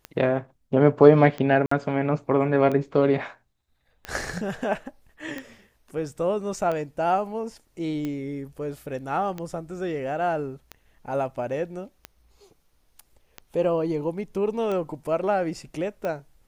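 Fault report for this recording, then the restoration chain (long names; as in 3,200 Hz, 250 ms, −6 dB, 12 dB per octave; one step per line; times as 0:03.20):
scratch tick 45 rpm −18 dBFS
0:01.66–0:01.71: drop-out 54 ms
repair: click removal
repair the gap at 0:01.66, 54 ms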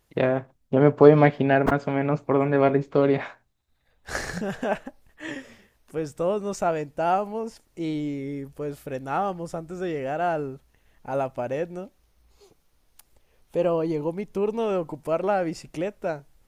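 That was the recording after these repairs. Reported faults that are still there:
none of them is left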